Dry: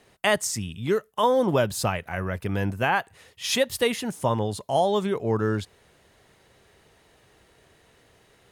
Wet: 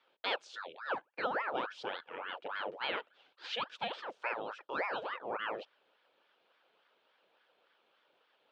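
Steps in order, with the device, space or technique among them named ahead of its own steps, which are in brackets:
voice changer toy (ring modulator whose carrier an LFO sweeps 930 Hz, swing 75%, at 3.5 Hz; loudspeaker in its box 480–3,700 Hz, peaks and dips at 510 Hz +5 dB, 730 Hz −3 dB, 1,100 Hz −5 dB, 2,000 Hz −8 dB, 3,100 Hz +3 dB)
level −7.5 dB

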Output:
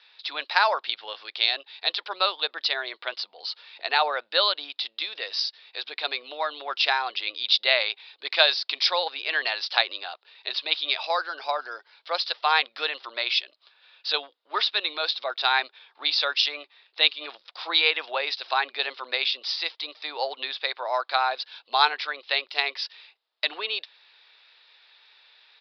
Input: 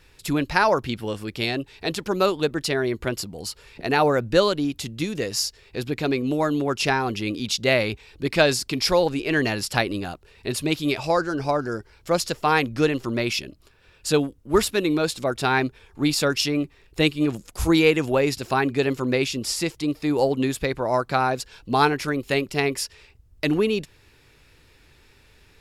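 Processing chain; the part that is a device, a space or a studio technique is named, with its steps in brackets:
musical greeting card (downsampling to 11,025 Hz; high-pass filter 680 Hz 24 dB per octave; parametric band 3,700 Hz +10.5 dB 0.47 octaves)
level −1 dB

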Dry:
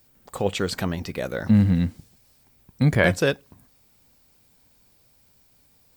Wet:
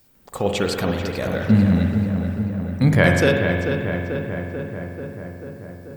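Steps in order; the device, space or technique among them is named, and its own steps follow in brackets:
dub delay into a spring reverb (feedback echo with a low-pass in the loop 439 ms, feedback 71%, low-pass 2,500 Hz, level −6.5 dB; spring reverb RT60 1.8 s, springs 45 ms, chirp 70 ms, DRR 3 dB)
level +2 dB

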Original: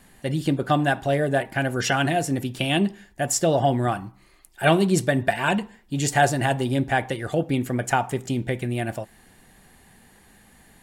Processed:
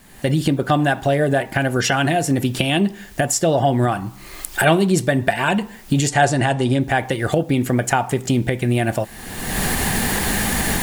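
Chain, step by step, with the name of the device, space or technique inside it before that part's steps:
cheap recorder with automatic gain (white noise bed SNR 38 dB; camcorder AGC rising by 37 dB per second)
0:06.08–0:06.80: low-pass filter 9,500 Hz 24 dB per octave
level +3 dB

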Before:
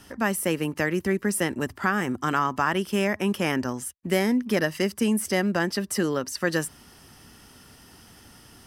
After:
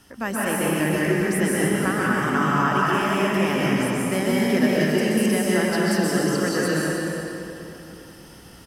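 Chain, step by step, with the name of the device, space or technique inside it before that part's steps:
cave (single-tap delay 303 ms −10 dB; convolution reverb RT60 3.2 s, pre-delay 119 ms, DRR −6.5 dB)
level −3.5 dB

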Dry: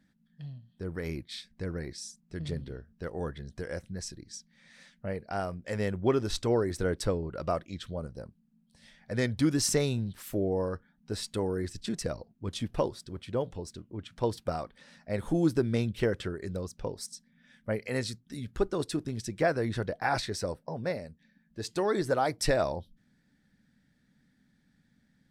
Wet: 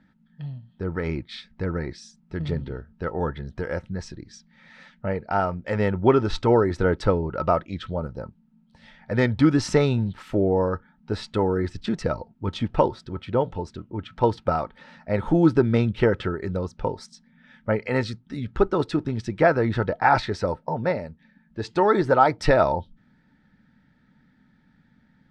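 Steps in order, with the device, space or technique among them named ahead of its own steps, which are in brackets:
inside a cardboard box (low-pass filter 3,100 Hz 12 dB per octave; hollow resonant body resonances 900/1,300 Hz, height 13 dB, ringing for 65 ms)
level +8 dB

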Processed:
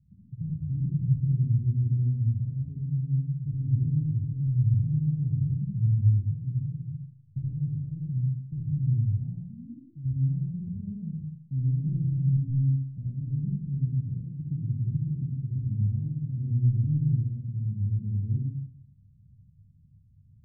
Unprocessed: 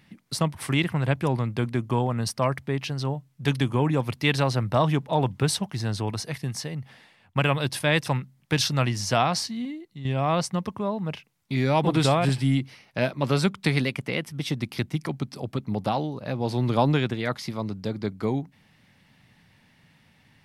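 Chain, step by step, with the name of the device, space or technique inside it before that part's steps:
club heard from the street (brickwall limiter −15.5 dBFS, peak gain reduction 8.5 dB; low-pass filter 140 Hz 24 dB per octave; convolution reverb RT60 0.70 s, pre-delay 51 ms, DRR −4 dB)
level +1.5 dB

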